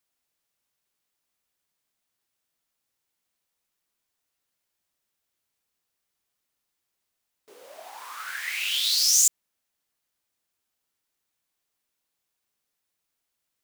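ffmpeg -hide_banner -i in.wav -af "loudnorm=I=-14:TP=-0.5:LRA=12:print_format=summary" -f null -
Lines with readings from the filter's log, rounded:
Input Integrated:    -20.9 LUFS
Input True Peak:      -6.7 dBTP
Input LRA:             5.3 LU
Input Threshold:     -33.5 LUFS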